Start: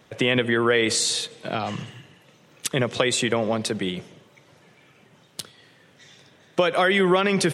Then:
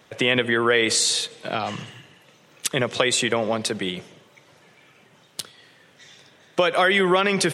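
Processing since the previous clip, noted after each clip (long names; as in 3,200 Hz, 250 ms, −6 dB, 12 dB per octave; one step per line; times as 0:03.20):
low-shelf EQ 370 Hz −6 dB
level +2.5 dB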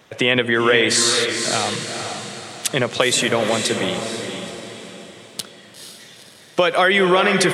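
feedback delay with all-pass diffusion 474 ms, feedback 45%, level −6 dB
level +3 dB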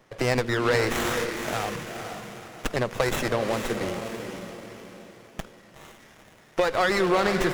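windowed peak hold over 9 samples
level −6.5 dB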